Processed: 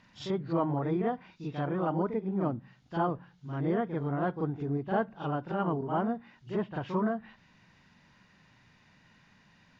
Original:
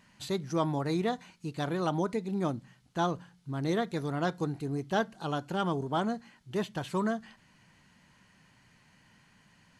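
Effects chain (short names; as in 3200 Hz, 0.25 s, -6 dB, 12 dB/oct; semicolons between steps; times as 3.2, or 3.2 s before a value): nonlinear frequency compression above 2600 Hz 1.5:1; reverse echo 42 ms -7.5 dB; treble ducked by the level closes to 1500 Hz, closed at -29 dBFS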